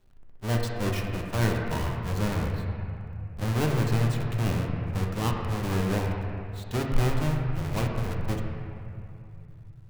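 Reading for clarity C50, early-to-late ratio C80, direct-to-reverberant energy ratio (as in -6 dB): 2.0 dB, 3.0 dB, -0.5 dB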